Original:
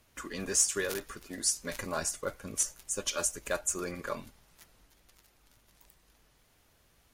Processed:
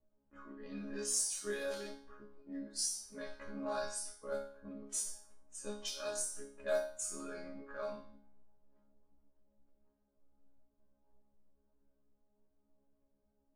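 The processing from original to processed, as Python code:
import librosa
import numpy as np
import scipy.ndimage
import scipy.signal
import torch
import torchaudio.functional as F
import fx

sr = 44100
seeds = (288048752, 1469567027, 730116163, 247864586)

y = fx.stretch_grains(x, sr, factor=1.9, grain_ms=60.0)
y = fx.env_lowpass(y, sr, base_hz=520.0, full_db=-28.0)
y = fx.resonator_bank(y, sr, root=56, chord='sus4', decay_s=0.48)
y = F.gain(torch.from_numpy(y), 12.5).numpy()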